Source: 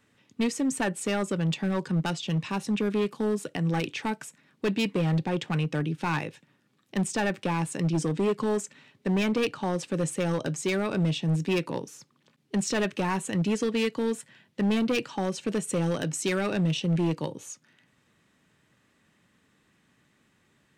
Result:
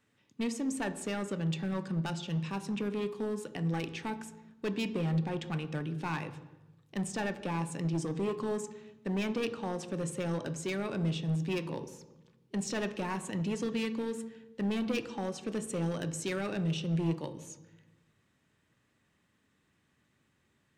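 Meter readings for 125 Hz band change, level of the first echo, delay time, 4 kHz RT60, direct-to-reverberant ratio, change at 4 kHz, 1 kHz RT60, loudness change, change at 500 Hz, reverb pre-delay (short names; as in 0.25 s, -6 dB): -5.5 dB, none, none, 0.80 s, 11.0 dB, -7.5 dB, 0.95 s, -6.5 dB, -7.0 dB, 21 ms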